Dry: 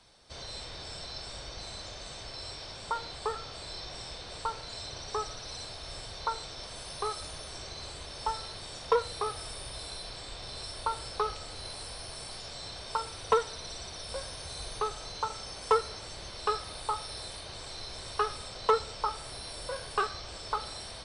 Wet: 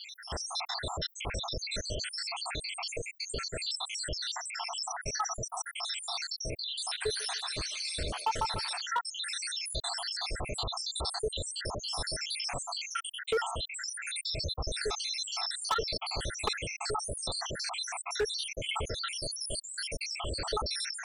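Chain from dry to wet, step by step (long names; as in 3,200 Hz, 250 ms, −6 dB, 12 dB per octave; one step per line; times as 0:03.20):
time-frequency cells dropped at random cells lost 83%
0:06.58–0:08.81: echo through a band-pass that steps 148 ms, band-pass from 1,300 Hz, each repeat 0.7 octaves, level −2.5 dB
hard clipping −29.5 dBFS, distortion −7 dB
dynamic equaliser 1,500 Hz, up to −5 dB, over −59 dBFS, Q 4.3
envelope flattener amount 50%
level +4.5 dB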